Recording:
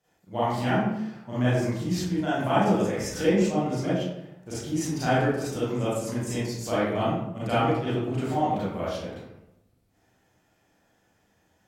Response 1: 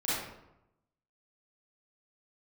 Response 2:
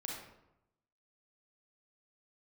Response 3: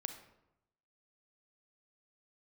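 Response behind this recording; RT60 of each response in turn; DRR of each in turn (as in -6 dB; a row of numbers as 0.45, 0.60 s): 1; 0.85, 0.85, 0.85 s; -11.5, -2.5, 7.0 dB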